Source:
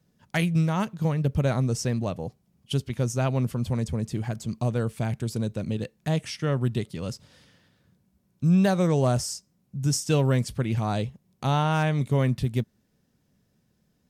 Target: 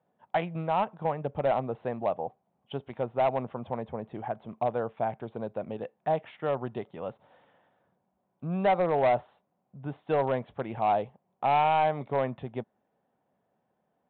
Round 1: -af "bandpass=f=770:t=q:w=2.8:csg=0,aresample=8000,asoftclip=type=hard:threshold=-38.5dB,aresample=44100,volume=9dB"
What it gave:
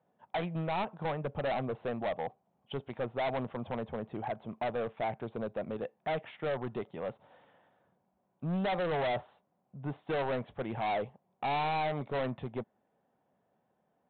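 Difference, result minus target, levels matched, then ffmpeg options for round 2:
hard clip: distortion +10 dB
-af "bandpass=f=770:t=q:w=2.8:csg=0,aresample=8000,asoftclip=type=hard:threshold=-28dB,aresample=44100,volume=9dB"

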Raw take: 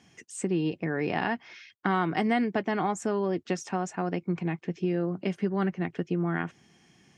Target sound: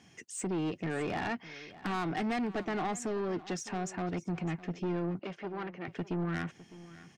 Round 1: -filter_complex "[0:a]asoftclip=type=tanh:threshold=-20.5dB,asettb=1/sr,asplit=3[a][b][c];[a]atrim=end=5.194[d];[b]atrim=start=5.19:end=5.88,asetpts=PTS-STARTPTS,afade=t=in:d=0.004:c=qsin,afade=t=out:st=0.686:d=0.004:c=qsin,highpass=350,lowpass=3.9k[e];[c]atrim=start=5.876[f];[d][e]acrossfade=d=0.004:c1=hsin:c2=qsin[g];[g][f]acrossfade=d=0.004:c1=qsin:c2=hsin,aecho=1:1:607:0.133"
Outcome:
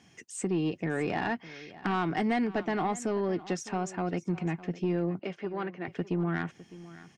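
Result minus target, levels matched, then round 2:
soft clip: distortion -8 dB
-filter_complex "[0:a]asoftclip=type=tanh:threshold=-29dB,asettb=1/sr,asplit=3[a][b][c];[a]atrim=end=5.194[d];[b]atrim=start=5.19:end=5.88,asetpts=PTS-STARTPTS,afade=t=in:d=0.004:c=qsin,afade=t=out:st=0.686:d=0.004:c=qsin,highpass=350,lowpass=3.9k[e];[c]atrim=start=5.876[f];[d][e]acrossfade=d=0.004:c1=hsin:c2=qsin[g];[g][f]acrossfade=d=0.004:c1=qsin:c2=hsin,aecho=1:1:607:0.133"

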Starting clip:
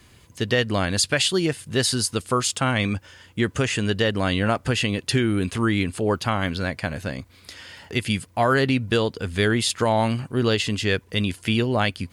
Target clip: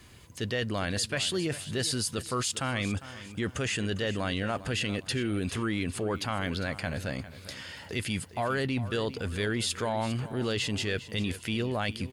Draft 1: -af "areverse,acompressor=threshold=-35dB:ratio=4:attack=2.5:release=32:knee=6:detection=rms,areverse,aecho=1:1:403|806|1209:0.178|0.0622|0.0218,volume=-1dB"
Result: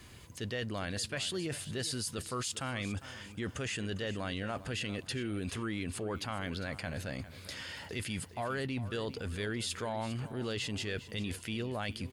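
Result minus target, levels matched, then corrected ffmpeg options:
compressor: peak gain reduction +6.5 dB
-af "areverse,acompressor=threshold=-26.5dB:ratio=4:attack=2.5:release=32:knee=6:detection=rms,areverse,aecho=1:1:403|806|1209:0.178|0.0622|0.0218,volume=-1dB"

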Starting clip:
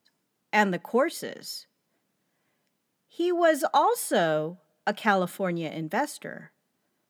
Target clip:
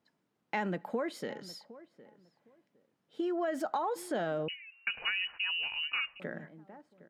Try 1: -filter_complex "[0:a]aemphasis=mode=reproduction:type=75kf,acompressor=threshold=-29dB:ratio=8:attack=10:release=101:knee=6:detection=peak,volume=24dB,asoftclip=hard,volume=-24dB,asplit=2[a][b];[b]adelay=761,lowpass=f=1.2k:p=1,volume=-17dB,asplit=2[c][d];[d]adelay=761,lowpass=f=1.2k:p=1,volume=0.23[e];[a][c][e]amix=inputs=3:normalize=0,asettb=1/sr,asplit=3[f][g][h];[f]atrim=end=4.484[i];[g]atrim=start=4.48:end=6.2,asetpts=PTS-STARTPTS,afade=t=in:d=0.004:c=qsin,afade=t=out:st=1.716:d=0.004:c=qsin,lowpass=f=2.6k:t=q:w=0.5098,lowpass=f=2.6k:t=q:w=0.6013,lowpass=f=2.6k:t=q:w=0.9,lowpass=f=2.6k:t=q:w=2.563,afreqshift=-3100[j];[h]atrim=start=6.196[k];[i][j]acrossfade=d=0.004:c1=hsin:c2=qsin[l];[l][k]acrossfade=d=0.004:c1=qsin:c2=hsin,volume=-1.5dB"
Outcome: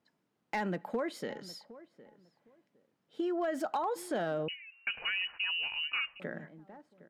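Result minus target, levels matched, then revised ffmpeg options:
overloaded stage: distortion +27 dB
-filter_complex "[0:a]aemphasis=mode=reproduction:type=75kf,acompressor=threshold=-29dB:ratio=8:attack=10:release=101:knee=6:detection=peak,volume=17.5dB,asoftclip=hard,volume=-17.5dB,asplit=2[a][b];[b]adelay=761,lowpass=f=1.2k:p=1,volume=-17dB,asplit=2[c][d];[d]adelay=761,lowpass=f=1.2k:p=1,volume=0.23[e];[a][c][e]amix=inputs=3:normalize=0,asettb=1/sr,asplit=3[f][g][h];[f]atrim=end=4.484[i];[g]atrim=start=4.48:end=6.2,asetpts=PTS-STARTPTS,afade=t=in:d=0.004:c=qsin,afade=t=out:st=1.716:d=0.004:c=qsin,lowpass=f=2.6k:t=q:w=0.5098,lowpass=f=2.6k:t=q:w=0.6013,lowpass=f=2.6k:t=q:w=0.9,lowpass=f=2.6k:t=q:w=2.563,afreqshift=-3100[j];[h]atrim=start=6.196[k];[i][j]acrossfade=d=0.004:c1=hsin:c2=qsin[l];[l][k]acrossfade=d=0.004:c1=qsin:c2=hsin,volume=-1.5dB"

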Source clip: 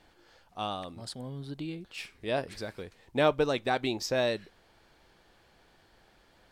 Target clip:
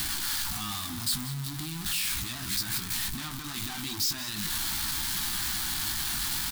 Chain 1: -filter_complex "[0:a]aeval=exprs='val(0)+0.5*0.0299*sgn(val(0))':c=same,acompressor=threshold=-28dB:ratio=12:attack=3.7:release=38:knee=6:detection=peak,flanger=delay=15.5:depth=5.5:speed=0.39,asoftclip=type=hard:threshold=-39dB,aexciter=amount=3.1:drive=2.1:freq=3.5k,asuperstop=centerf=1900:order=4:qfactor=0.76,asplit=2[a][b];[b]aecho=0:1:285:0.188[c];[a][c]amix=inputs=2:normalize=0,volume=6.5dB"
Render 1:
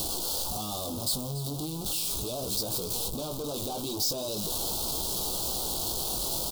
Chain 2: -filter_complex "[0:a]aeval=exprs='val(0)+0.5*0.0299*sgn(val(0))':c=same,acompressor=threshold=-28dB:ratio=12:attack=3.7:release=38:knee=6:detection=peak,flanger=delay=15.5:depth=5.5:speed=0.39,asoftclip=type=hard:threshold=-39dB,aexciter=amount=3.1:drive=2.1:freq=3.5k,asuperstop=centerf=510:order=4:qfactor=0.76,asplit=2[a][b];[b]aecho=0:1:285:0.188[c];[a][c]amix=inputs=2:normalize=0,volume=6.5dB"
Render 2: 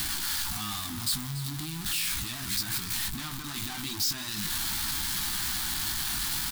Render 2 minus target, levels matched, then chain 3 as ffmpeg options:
echo 0.1 s late
-filter_complex "[0:a]aeval=exprs='val(0)+0.5*0.0299*sgn(val(0))':c=same,acompressor=threshold=-28dB:ratio=12:attack=3.7:release=38:knee=6:detection=peak,flanger=delay=15.5:depth=5.5:speed=0.39,asoftclip=type=hard:threshold=-39dB,aexciter=amount=3.1:drive=2.1:freq=3.5k,asuperstop=centerf=510:order=4:qfactor=0.76,asplit=2[a][b];[b]aecho=0:1:185:0.188[c];[a][c]amix=inputs=2:normalize=0,volume=6.5dB"

